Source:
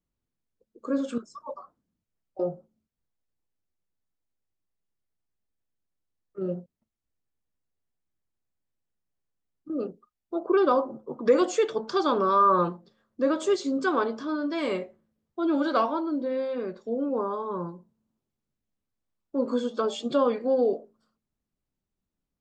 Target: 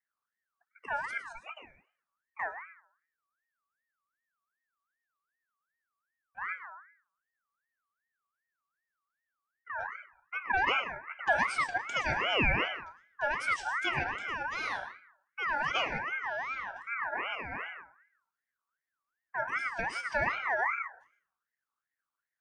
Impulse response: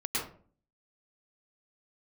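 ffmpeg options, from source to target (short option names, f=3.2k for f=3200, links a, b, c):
-filter_complex "[0:a]asplit=2[a][b];[1:a]atrim=start_sample=2205,lowshelf=f=330:g=7,highshelf=f=5.2k:g=11.5[c];[b][c]afir=irnorm=-1:irlink=0,volume=-17dB[d];[a][d]amix=inputs=2:normalize=0,aeval=exprs='val(0)*sin(2*PI*1500*n/s+1500*0.25/2.6*sin(2*PI*2.6*n/s))':c=same,volume=-6dB"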